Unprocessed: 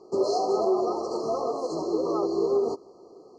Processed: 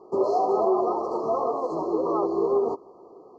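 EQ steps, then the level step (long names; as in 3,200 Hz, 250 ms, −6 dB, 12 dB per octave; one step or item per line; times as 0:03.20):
high shelf with overshoot 1,500 Hz −12 dB, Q 3
0.0 dB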